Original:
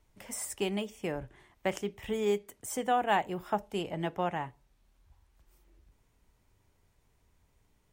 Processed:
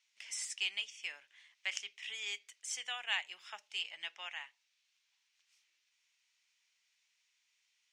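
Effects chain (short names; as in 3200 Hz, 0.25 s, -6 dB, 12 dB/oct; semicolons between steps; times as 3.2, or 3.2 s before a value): Chebyshev band-pass 2400–6100 Hz, order 2; gain +5.5 dB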